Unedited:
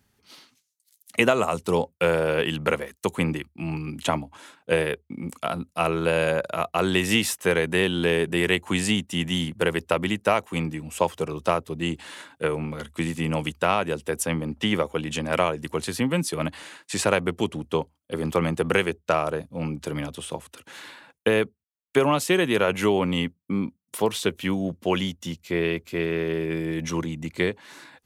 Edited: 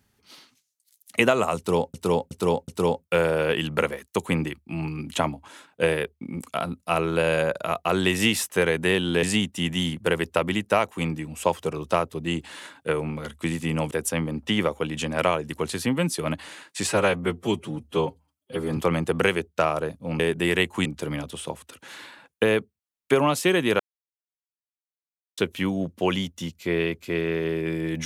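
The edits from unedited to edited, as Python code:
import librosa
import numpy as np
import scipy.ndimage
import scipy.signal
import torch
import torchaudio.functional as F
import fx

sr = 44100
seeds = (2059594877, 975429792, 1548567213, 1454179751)

y = fx.edit(x, sr, fx.repeat(start_s=1.57, length_s=0.37, count=4),
    fx.move(start_s=8.12, length_s=0.66, to_s=19.7),
    fx.cut(start_s=13.46, length_s=0.59),
    fx.stretch_span(start_s=17.01, length_s=1.27, factor=1.5),
    fx.silence(start_s=22.64, length_s=1.58), tone=tone)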